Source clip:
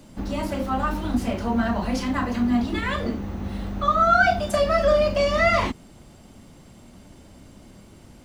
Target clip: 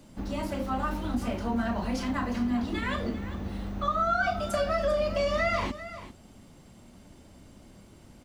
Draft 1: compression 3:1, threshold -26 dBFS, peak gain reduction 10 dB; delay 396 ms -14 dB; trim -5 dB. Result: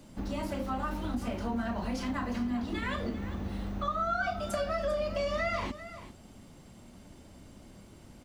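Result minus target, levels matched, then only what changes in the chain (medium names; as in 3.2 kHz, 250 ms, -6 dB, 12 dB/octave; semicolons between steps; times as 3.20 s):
compression: peak gain reduction +4.5 dB
change: compression 3:1, threshold -19 dBFS, peak gain reduction 5.5 dB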